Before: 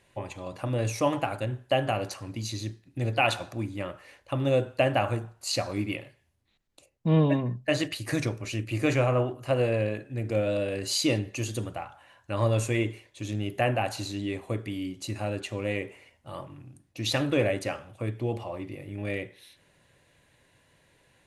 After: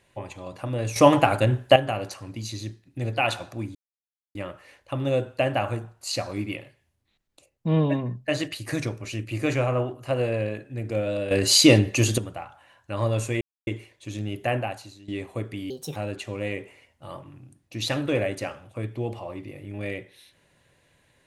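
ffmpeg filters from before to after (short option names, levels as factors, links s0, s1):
-filter_complex "[0:a]asplit=10[s0][s1][s2][s3][s4][s5][s6][s7][s8][s9];[s0]atrim=end=0.962[s10];[s1]atrim=start=0.958:end=1.762,asetpts=PTS-STARTPTS,volume=3.16[s11];[s2]atrim=start=1.758:end=3.75,asetpts=PTS-STARTPTS,afade=t=out:st=1.988:d=0.004:c=hsin,apad=pad_dur=0.6[s12];[s3]atrim=start=3.75:end=10.712,asetpts=PTS-STARTPTS,afade=t=in:d=0.004:c=hsin[s13];[s4]atrim=start=10.708:end=11.582,asetpts=PTS-STARTPTS,volume=3.35[s14];[s5]atrim=start=11.578:end=12.81,asetpts=PTS-STARTPTS,afade=t=out:st=1.228:d=0.004:c=hsin,apad=pad_dur=0.26[s15];[s6]atrim=start=12.81:end=14.22,asetpts=PTS-STARTPTS,afade=t=in:d=0.004:c=hsin,afade=t=out:st=0.91:d=0.5:c=qua:silence=0.158489[s16];[s7]atrim=start=14.22:end=14.844,asetpts=PTS-STARTPTS,afade=t=in:d=0.004:c=hsin:silence=0.158489[s17];[s8]atrim=start=14.84:end=15.2,asetpts=PTS-STARTPTS,asetrate=61299,aresample=44100[s18];[s9]atrim=start=15.196[s19];[s10][s11]acrossfade=d=0.004:c1=hsin:c2=hsin[s20];[s12][s13]concat=n=2:v=0:a=1[s21];[s20][s21]acrossfade=d=0.004:c1=hsin:c2=hsin[s22];[s22][s14]acrossfade=d=0.004:c1=hsin:c2=hsin[s23];[s15][s16][s17]concat=n=3:v=0:a=1[s24];[s23][s24]acrossfade=d=0.004:c1=hsin:c2=hsin[s25];[s25][s18]acrossfade=d=0.004:c1=hsin:c2=hsin[s26];[s26][s19]acrossfade=d=0.004:c1=hsin:c2=hsin"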